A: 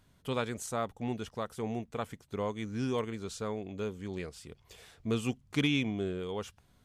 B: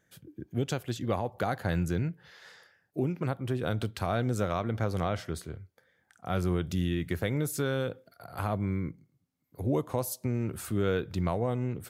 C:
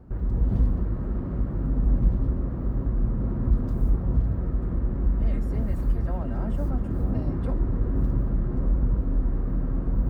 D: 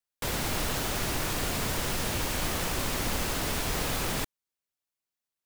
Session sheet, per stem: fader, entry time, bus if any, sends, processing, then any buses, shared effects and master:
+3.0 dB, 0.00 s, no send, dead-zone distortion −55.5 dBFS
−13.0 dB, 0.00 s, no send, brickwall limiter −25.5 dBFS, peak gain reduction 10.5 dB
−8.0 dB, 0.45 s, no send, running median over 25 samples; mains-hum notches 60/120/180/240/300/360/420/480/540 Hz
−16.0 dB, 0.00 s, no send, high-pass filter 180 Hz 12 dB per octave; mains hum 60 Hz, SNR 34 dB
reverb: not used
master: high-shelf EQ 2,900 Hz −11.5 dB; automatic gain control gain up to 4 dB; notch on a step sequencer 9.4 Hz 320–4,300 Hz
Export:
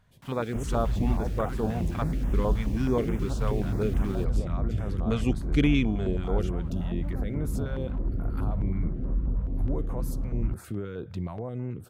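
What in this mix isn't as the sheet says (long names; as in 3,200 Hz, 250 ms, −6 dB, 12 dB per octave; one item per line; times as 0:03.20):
stem A: missing dead-zone distortion −55.5 dBFS
stem B −13.0 dB → −2.5 dB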